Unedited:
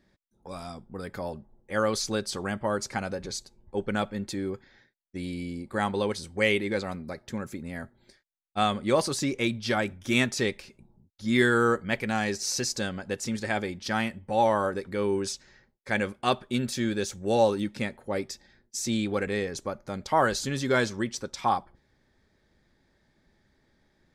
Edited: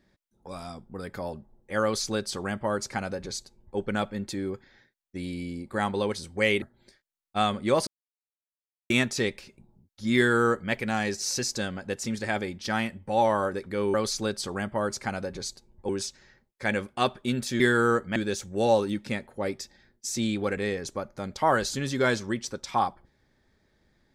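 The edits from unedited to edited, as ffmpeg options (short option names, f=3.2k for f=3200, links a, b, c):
-filter_complex "[0:a]asplit=8[a][b][c][d][e][f][g][h];[a]atrim=end=6.622[i];[b]atrim=start=7.828:end=9.08,asetpts=PTS-STARTPTS,afade=t=out:st=1.248:d=0.004:c=hsin[j];[c]atrim=start=9.08:end=10.11,asetpts=PTS-STARTPTS,volume=0[k];[d]atrim=start=10.11:end=15.152,asetpts=PTS-STARTPTS,afade=t=in:d=0.004:c=hsin[l];[e]atrim=start=1.828:end=3.782[m];[f]atrim=start=15.148:end=16.862[n];[g]atrim=start=11.368:end=11.932[o];[h]atrim=start=16.858[p];[j][k][l]concat=n=3:v=0:a=1[q];[i][q]acrossfade=d=0.004:c1=hsin:c2=hsin[r];[r][m]acrossfade=d=0.004:c1=hsin:c2=hsin[s];[s][n]acrossfade=d=0.004:c1=hsin:c2=hsin[t];[t][o]acrossfade=d=0.004:c1=hsin:c2=hsin[u];[u][p]acrossfade=d=0.004:c1=hsin:c2=hsin"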